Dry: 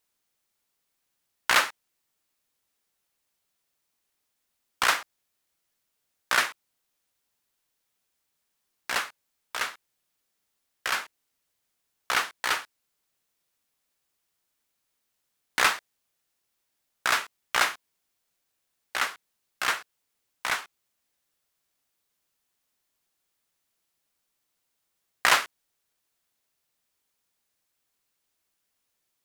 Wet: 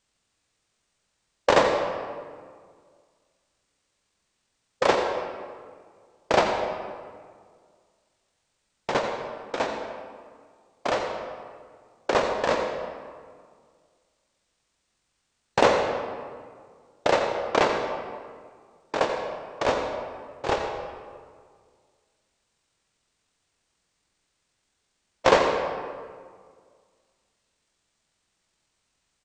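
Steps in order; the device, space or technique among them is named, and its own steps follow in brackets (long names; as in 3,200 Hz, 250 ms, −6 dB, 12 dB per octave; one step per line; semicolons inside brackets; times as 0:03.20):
0:19.65–0:20.54: low-shelf EQ 390 Hz +5.5 dB
monster voice (pitch shifter −10.5 semitones; formants moved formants −4.5 semitones; low-shelf EQ 180 Hz +7 dB; single-tap delay 85 ms −13 dB; convolution reverb RT60 1.9 s, pre-delay 82 ms, DRR 5 dB)
level +3 dB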